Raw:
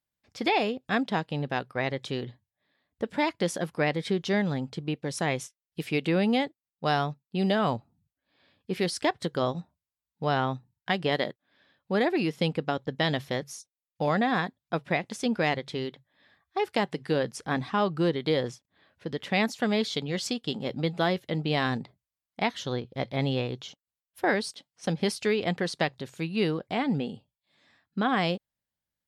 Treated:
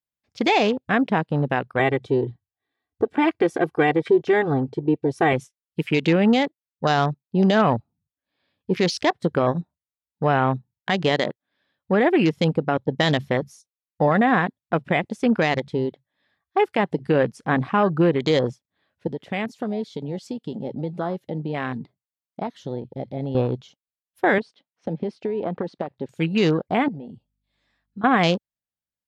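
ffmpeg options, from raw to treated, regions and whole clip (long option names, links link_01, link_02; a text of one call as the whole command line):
ffmpeg -i in.wav -filter_complex "[0:a]asettb=1/sr,asplit=3[link_01][link_02][link_03];[link_01]atrim=end=1.794[link_04];[link_02]atrim=start=1.79:end=5.33,asetpts=PTS-STARTPTS,afade=type=in:duration=0.004:curve=qsin,afade=type=out:start_time=3.536:duration=0.004:curve=qsin,highshelf=frequency=2900:gain=-7,aecho=1:1:2.6:0.89,atrim=end_sample=156114[link_05];[link_03]atrim=start=5.326[link_06];[link_04][link_05]acrossfade=duration=0.004:curve1=hsin:curve2=qsin[link_07];[link_07][link_06]acrossfade=duration=0.004:curve1=qsin:curve2=hsin,asettb=1/sr,asplit=3[link_08][link_09][link_10];[link_08]atrim=end=19.074[link_11];[link_09]atrim=start=19.07:end=23.35,asetpts=PTS-STARTPTS,afade=type=in:duration=0.004:curve=qsin,afade=type=out:start_time=4.276:duration=0.004:curve=qsin,acompressor=threshold=-38dB:ratio=2:attack=3.2:release=140:knee=1:detection=peak,highpass=110[link_12];[link_10]atrim=start=23.346[link_13];[link_11][link_12]acrossfade=duration=0.004:curve1=hsin:curve2=qsin[link_14];[link_14][link_13]acrossfade=duration=0.004:curve1=qsin:curve2=hsin,asettb=1/sr,asplit=3[link_15][link_16][link_17];[link_15]atrim=end=24.384[link_18];[link_16]atrim=start=24.38:end=26.09,asetpts=PTS-STARTPTS,afade=type=in:duration=0.004:curve=qsin,afade=type=out:start_time=1.706:duration=0.004:curve=qsin,highpass=190,lowpass=2900,acompressor=threshold=-29dB:ratio=16:attack=3.2:release=140:knee=1:detection=peak[link_19];[link_17]atrim=start=26.086[link_20];[link_18][link_19]acrossfade=duration=0.004:curve1=hsin:curve2=qsin[link_21];[link_21][link_20]acrossfade=duration=0.004:curve1=qsin:curve2=hsin,asettb=1/sr,asplit=3[link_22][link_23][link_24];[link_22]atrim=end=26.884[link_25];[link_23]atrim=start=26.88:end=28.04,asetpts=PTS-STARTPTS,afade=type=in:duration=0.004:curve=qsin,afade=type=out:start_time=1.156:duration=0.004:curve=qsin,acompressor=threshold=-48dB:ratio=2.5:attack=3.2:release=140:knee=1:detection=peak,aeval=exprs='val(0)+0.000316*(sin(2*PI*50*n/s)+sin(2*PI*2*50*n/s)/2+sin(2*PI*3*50*n/s)/3+sin(2*PI*4*50*n/s)/4+sin(2*PI*5*50*n/s)/5)':channel_layout=same[link_26];[link_24]atrim=start=28.036[link_27];[link_25][link_26]acrossfade=duration=0.004:curve1=hsin:curve2=qsin[link_28];[link_28][link_27]acrossfade=duration=0.004:curve1=qsin:curve2=hsin,afwtdn=0.0126,alimiter=level_in=17.5dB:limit=-1dB:release=50:level=0:latency=1,volume=-8.5dB" out.wav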